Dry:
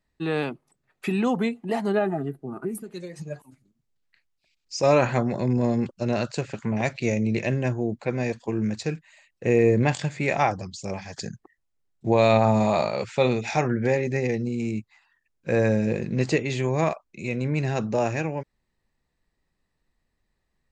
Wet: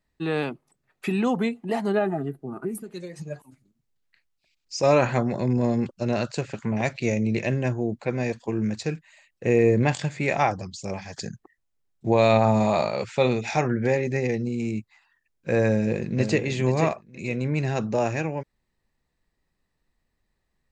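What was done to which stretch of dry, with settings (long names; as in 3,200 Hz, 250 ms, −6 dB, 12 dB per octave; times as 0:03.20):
0:15.70–0:16.43: delay throw 480 ms, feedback 15%, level −7.5 dB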